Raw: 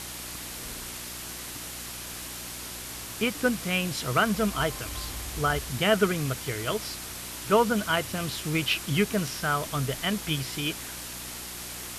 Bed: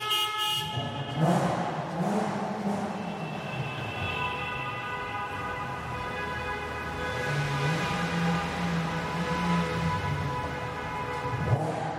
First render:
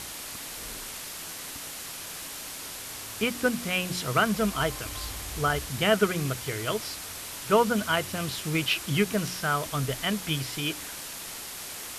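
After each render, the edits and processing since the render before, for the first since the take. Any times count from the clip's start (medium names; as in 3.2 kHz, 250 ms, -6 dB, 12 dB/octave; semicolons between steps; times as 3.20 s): de-hum 60 Hz, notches 6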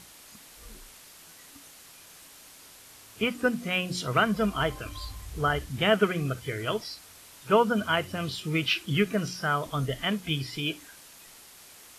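noise print and reduce 12 dB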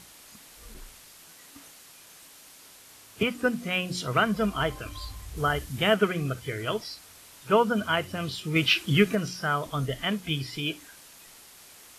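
0.74–3.23 s: three bands expanded up and down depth 70%; 5.37–5.94 s: treble shelf 7.5 kHz +6.5 dB; 8.56–9.15 s: gain +4 dB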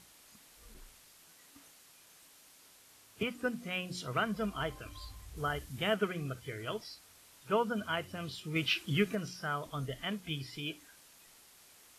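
trim -9 dB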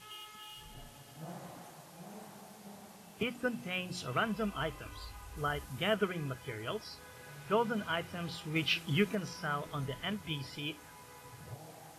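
add bed -22 dB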